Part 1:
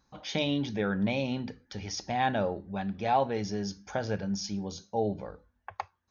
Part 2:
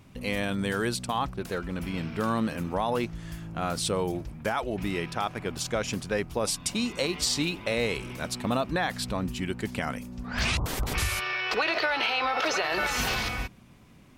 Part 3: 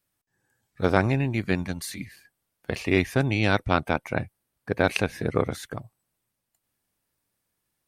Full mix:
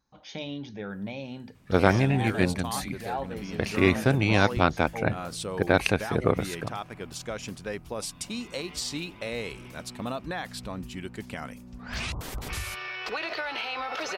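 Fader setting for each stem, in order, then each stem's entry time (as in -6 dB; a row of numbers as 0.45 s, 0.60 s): -7.0 dB, -6.0 dB, +0.5 dB; 0.00 s, 1.55 s, 0.90 s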